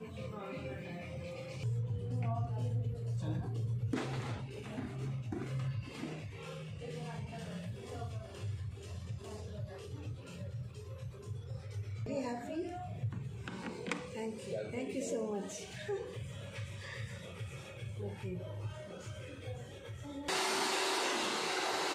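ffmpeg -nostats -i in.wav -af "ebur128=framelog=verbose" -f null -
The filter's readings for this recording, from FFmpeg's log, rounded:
Integrated loudness:
  I:         -40.0 LUFS
  Threshold: -50.0 LUFS
Loudness range:
  LRA:         6.9 LU
  Threshold: -60.8 LUFS
  LRA low:   -44.5 LUFS
  LRA high:  -37.6 LUFS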